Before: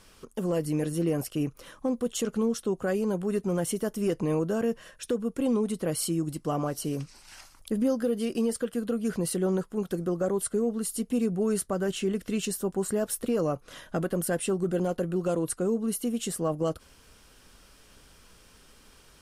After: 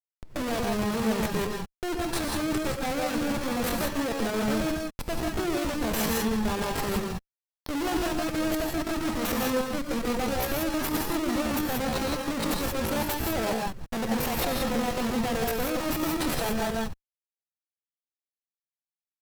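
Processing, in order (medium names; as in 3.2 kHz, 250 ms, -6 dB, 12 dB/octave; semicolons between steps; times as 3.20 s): Schmitt trigger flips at -31 dBFS; gated-style reverb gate 200 ms rising, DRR 0 dB; pitch shift +5.5 st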